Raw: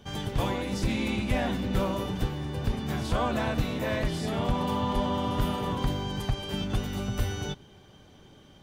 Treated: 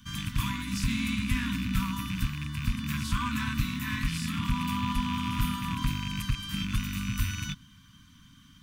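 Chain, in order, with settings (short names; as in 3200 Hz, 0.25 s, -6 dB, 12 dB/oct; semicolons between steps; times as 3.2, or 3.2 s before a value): rattling part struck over -31 dBFS, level -27 dBFS; Chebyshev band-stop 280–1000 Hz, order 5; high shelf 7500 Hz +8 dB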